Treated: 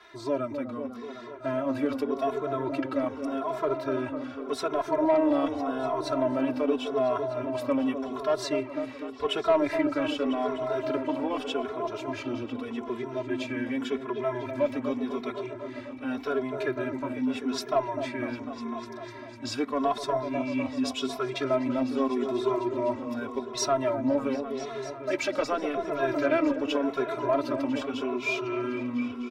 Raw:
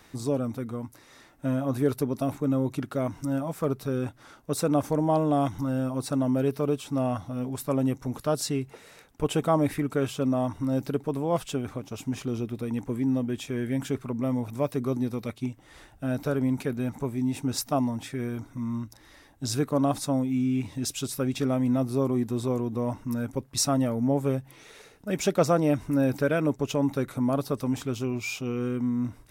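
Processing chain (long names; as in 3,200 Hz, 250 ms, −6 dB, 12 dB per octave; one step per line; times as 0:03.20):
high-pass filter 56 Hz
three-way crossover with the lows and the highs turned down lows −14 dB, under 420 Hz, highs −23 dB, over 4,400 Hz
notch filter 730 Hz, Q 12
comb filter 3 ms, depth 85%
in parallel at 0 dB: brickwall limiter −20.5 dBFS, peak gain reduction 9.5 dB
on the sum: soft clipping −13.5 dBFS, distortion −21 dB
on a send: echo whose low-pass opens from repeat to repeat 250 ms, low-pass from 750 Hz, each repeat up 1 octave, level −6 dB
on the sum: barber-pole flanger 2.4 ms −0.85 Hz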